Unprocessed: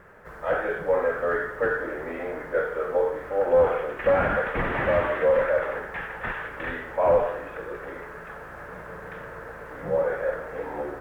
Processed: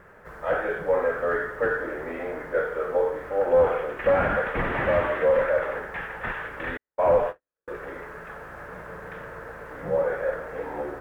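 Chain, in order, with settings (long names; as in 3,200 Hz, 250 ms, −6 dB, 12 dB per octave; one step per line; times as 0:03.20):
0:06.77–0:07.68: noise gate −26 dBFS, range −58 dB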